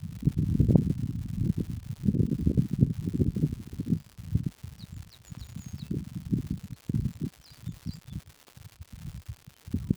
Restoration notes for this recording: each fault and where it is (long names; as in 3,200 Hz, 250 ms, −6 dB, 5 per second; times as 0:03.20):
surface crackle 230 per second −38 dBFS